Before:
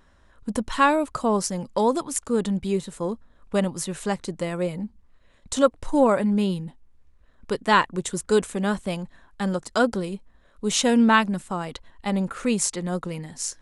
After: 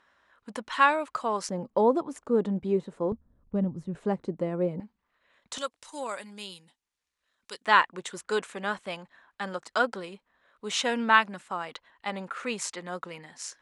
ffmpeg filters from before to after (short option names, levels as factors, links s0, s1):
-af "asetnsamples=n=441:p=0,asendcmd='1.49 bandpass f 470;3.12 bandpass f 110;3.95 bandpass f 330;4.8 bandpass f 1700;5.58 bandpass f 5800;7.65 bandpass f 1700',bandpass=f=1800:t=q:w=0.66:csg=0"